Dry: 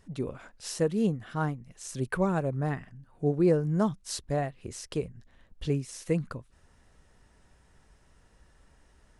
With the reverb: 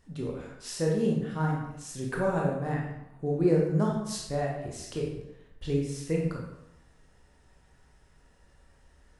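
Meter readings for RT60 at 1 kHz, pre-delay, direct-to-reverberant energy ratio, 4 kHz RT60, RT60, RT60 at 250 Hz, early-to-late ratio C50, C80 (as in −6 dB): 0.85 s, 18 ms, −2.5 dB, 0.65 s, 0.85 s, 0.80 s, 2.0 dB, 5.5 dB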